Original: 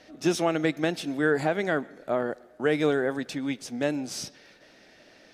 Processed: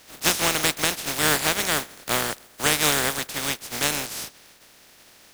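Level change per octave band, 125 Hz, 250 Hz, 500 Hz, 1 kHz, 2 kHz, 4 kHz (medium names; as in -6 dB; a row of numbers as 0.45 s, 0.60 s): +1.0 dB, -5.0 dB, -4.5 dB, +5.5 dB, +6.5 dB, +14.0 dB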